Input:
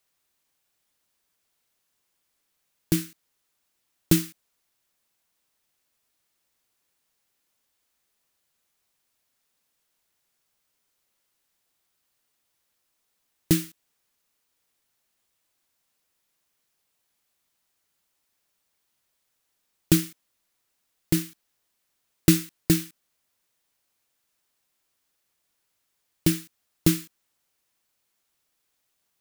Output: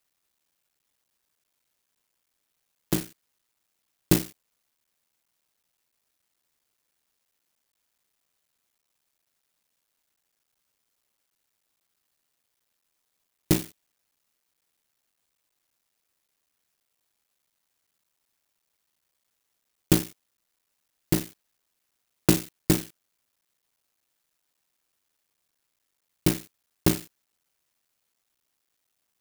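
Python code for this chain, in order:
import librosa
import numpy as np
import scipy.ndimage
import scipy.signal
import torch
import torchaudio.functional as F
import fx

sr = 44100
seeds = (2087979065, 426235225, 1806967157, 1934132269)

y = fx.cycle_switch(x, sr, every=3, mode='muted')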